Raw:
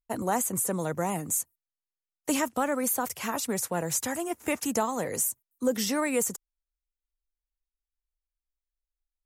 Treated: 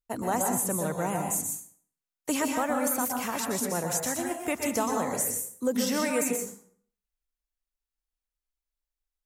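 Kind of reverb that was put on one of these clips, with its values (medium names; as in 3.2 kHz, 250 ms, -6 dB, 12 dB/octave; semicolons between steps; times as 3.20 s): plate-style reverb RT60 0.55 s, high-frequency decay 0.75×, pre-delay 110 ms, DRR 2 dB; trim -1.5 dB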